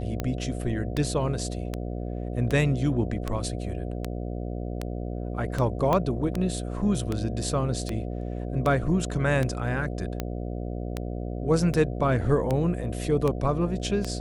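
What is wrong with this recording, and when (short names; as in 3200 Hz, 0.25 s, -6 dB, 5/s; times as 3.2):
buzz 60 Hz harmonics 12 -32 dBFS
tick 78 rpm -14 dBFS
5.93 pop -12 dBFS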